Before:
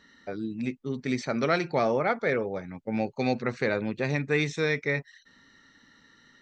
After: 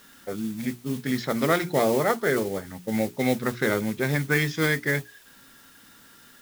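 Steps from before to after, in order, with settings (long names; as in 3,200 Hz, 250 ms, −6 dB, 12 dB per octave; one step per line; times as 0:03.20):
noise that follows the level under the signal 17 dB
mains-hum notches 60/120/180/240/300/360/420 Hz
formants moved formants −2 semitones
in parallel at −7 dB: bit-depth reduction 8 bits, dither triangular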